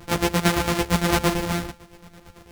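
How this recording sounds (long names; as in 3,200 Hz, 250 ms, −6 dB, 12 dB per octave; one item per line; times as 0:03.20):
a buzz of ramps at a fixed pitch in blocks of 256 samples
chopped level 8.9 Hz, depth 60%, duty 45%
a shimmering, thickened sound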